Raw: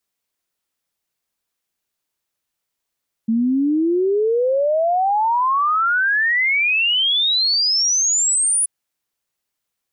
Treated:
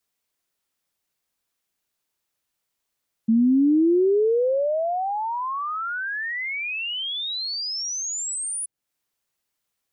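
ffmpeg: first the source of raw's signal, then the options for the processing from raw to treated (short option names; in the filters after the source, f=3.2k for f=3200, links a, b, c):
-f lavfi -i "aevalsrc='0.188*clip(min(t,5.38-t)/0.01,0,1)*sin(2*PI*220*5.38/log(10000/220)*(exp(log(10000/220)*t/5.38)-1))':d=5.38:s=44100"
-filter_complex "[0:a]acrossover=split=490[a][b];[b]acompressor=threshold=-34dB:ratio=2.5[c];[a][c]amix=inputs=2:normalize=0"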